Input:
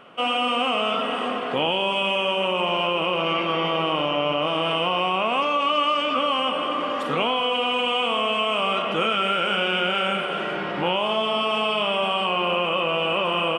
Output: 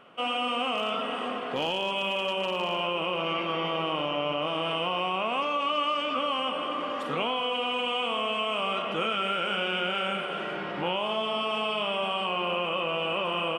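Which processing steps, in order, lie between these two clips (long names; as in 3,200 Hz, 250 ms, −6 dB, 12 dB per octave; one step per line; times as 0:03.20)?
0:00.74–0:02.80: hard clipping −14 dBFS, distortion −33 dB
level −6 dB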